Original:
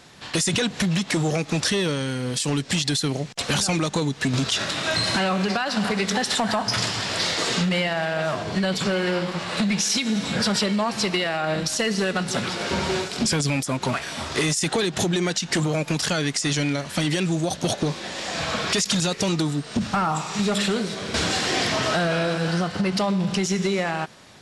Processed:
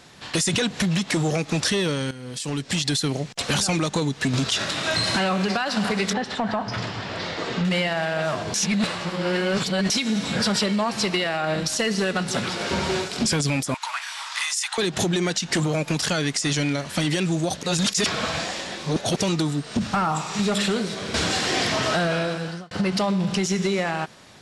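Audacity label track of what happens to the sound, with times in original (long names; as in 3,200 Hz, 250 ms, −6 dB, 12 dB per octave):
2.110000	2.890000	fade in, from −13 dB
6.130000	7.650000	head-to-tape spacing loss at 10 kHz 24 dB
8.540000	9.900000	reverse
13.740000	14.780000	elliptic high-pass filter 900 Hz, stop band 80 dB
17.630000	19.160000	reverse
21.950000	22.710000	fade out equal-power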